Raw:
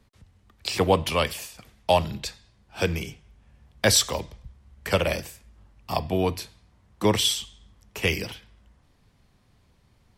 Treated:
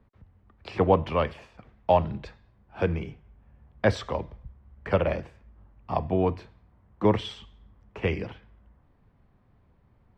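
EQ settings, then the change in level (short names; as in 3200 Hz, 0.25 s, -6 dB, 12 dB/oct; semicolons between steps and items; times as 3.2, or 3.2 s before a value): LPF 1500 Hz 12 dB/oct; 0.0 dB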